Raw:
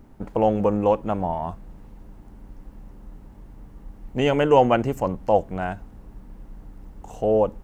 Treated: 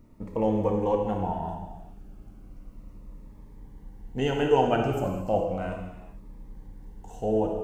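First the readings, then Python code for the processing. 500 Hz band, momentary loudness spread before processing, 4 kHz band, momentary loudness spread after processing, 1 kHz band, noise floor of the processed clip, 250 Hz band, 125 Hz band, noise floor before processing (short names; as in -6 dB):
-5.0 dB, 13 LU, -3.5 dB, 17 LU, -5.5 dB, -49 dBFS, -3.5 dB, -2.5 dB, -46 dBFS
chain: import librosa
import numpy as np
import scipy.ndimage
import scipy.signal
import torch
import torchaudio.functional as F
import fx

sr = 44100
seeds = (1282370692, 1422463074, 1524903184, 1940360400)

y = fx.rev_gated(x, sr, seeds[0], gate_ms=480, shape='falling', drr_db=1.0)
y = fx.notch_cascade(y, sr, direction='falling', hz=0.34)
y = y * librosa.db_to_amplitude(-5.5)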